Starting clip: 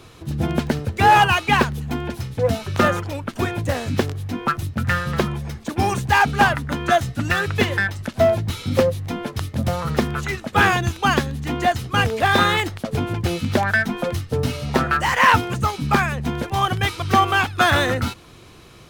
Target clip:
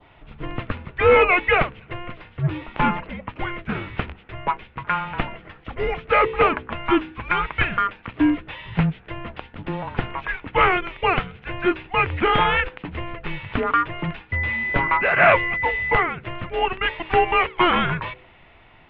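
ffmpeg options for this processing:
-filter_complex "[0:a]highpass=f=310:t=q:w=0.5412,highpass=f=310:t=q:w=1.307,lowpass=f=3.3k:t=q:w=0.5176,lowpass=f=3.3k:t=q:w=0.7071,lowpass=f=3.3k:t=q:w=1.932,afreqshift=-360,adynamicequalizer=threshold=0.0141:dfrequency=2300:dqfactor=1.4:tfrequency=2300:tqfactor=1.4:attack=5:release=100:ratio=0.375:range=3:mode=boostabove:tftype=bell,asettb=1/sr,asplit=3[a][b][c];[a]atrim=end=14.324[d];[b]atrim=start=14.32:end=16.03,asetpts=PTS-STARTPTS,afade=t=in:d=0.004:c=qsin,afade=t=out:st=1.706:d=0.004:c=qsin,aeval=exprs='val(0)+0.0891*sin(2*PI*2000*n/s)':c=same[e];[c]atrim=start=16.026[f];[d][e]acrossfade=d=0.004:c1=hsin:c2=qsin[g];[g][f]acrossfade=d=0.004:c1=qsin:c2=hsin,bandreject=f=63.31:t=h:w=4,bandreject=f=126.62:t=h:w=4,bandreject=f=189.93:t=h:w=4,bandreject=f=253.24:t=h:w=4,bandreject=f=316.55:t=h:w=4,bandreject=f=379.86:t=h:w=4,bandreject=f=443.17:t=h:w=4,bandreject=f=506.48:t=h:w=4,volume=-1.5dB"

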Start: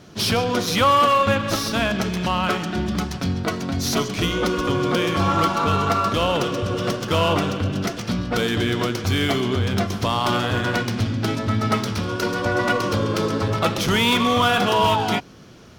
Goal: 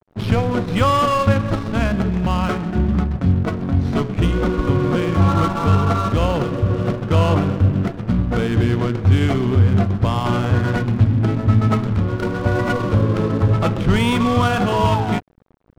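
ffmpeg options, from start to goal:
-af "aemphasis=mode=reproduction:type=bsi,adynamicsmooth=sensitivity=2:basefreq=930,aeval=exprs='sgn(val(0))*max(abs(val(0))-0.0188,0)':c=same"

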